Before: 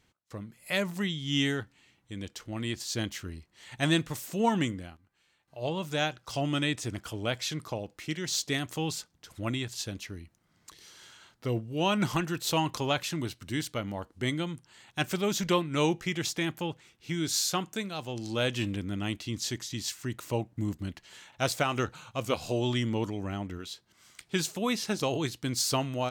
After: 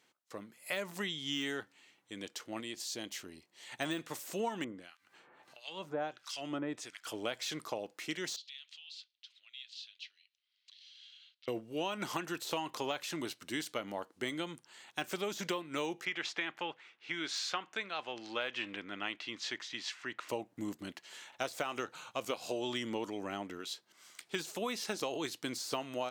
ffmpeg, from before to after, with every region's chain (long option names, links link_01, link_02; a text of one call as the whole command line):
ffmpeg -i in.wav -filter_complex "[0:a]asettb=1/sr,asplit=3[link_01][link_02][link_03];[link_01]atrim=end=2.604[link_04];[link_02]atrim=start=2.6:end=3.7,asetpts=PTS-STARTPTS,afade=type=in:duration=0.004:curve=qsin,afade=type=out:start_time=1.096:duration=0.004:curve=qsin,equalizer=frequency=1400:width_type=o:width=0.92:gain=-5.5,acompressor=threshold=-38dB:ratio=2:attack=3.2:release=140:knee=1:detection=peak[link_05];[link_03]atrim=start=3.696[link_06];[link_04][link_05]acrossfade=duration=0.004:curve1=hsin:curve2=qsin[link_07];[link_07][link_06]acrossfade=duration=0.004:curve1=qsin:curve2=hsin,asettb=1/sr,asplit=3[link_08][link_09][link_10];[link_08]atrim=end=4.644[link_11];[link_09]atrim=start=4.64:end=7.07,asetpts=PTS-STARTPTS,afade=type=in:duration=0.004:curve=qsin,afade=type=out:start_time=2.426:duration=0.004:curve=qsin,highshelf=frequency=9900:gain=-11.5,acompressor=mode=upward:threshold=-34dB:ratio=2.5:attack=3.2:release=140:knee=2.83:detection=peak,acrossover=split=1400[link_12][link_13];[link_12]aeval=exprs='val(0)*(1-1/2+1/2*cos(2*PI*1.5*n/s))':channel_layout=same[link_14];[link_13]aeval=exprs='val(0)*(1-1/2-1/2*cos(2*PI*1.5*n/s))':channel_layout=same[link_15];[link_14][link_15]amix=inputs=2:normalize=0[link_16];[link_10]atrim=start=7.066[link_17];[link_11][link_16]acrossfade=duration=0.004:curve1=hsin:curve2=qsin[link_18];[link_18][link_17]acrossfade=duration=0.004:curve1=qsin:curve2=hsin,asettb=1/sr,asplit=3[link_19][link_20][link_21];[link_19]atrim=end=8.364[link_22];[link_20]atrim=start=8.36:end=11.48,asetpts=PTS-STARTPTS,afade=type=in:duration=0.004:curve=qsin,afade=type=out:start_time=3.116:duration=0.004:curve=qsin,acompressor=threshold=-36dB:ratio=16:attack=3.2:release=140:knee=1:detection=peak,asuperpass=centerf=3400:order=4:qfactor=1.9[link_23];[link_21]atrim=start=11.476[link_24];[link_22][link_23]acrossfade=duration=0.004:curve1=hsin:curve2=qsin[link_25];[link_25][link_24]acrossfade=duration=0.004:curve1=qsin:curve2=hsin,asettb=1/sr,asplit=3[link_26][link_27][link_28];[link_26]atrim=end=16.054[link_29];[link_27]atrim=start=16.05:end=20.29,asetpts=PTS-STARTPTS,afade=type=in:duration=0.004:curve=qsin,afade=type=out:start_time=4.236:duration=0.004:curve=qsin,lowpass=2200,tiltshelf=frequency=800:gain=-8.5[link_30];[link_28]atrim=start=20.286[link_31];[link_29][link_30]acrossfade=duration=0.004:curve1=hsin:curve2=qsin[link_32];[link_32][link_31]acrossfade=duration=0.004:curve1=qsin:curve2=hsin,deesser=0.8,highpass=330,acompressor=threshold=-32dB:ratio=10" out.wav